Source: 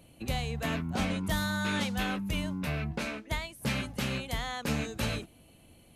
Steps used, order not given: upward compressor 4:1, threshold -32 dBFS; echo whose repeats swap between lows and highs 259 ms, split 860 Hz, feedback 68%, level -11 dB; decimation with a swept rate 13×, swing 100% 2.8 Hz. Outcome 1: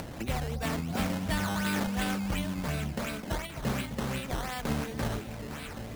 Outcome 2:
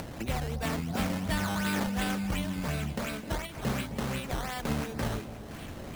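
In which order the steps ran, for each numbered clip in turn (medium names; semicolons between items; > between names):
echo whose repeats swap between lows and highs > decimation with a swept rate > upward compressor; decimation with a swept rate > upward compressor > echo whose repeats swap between lows and highs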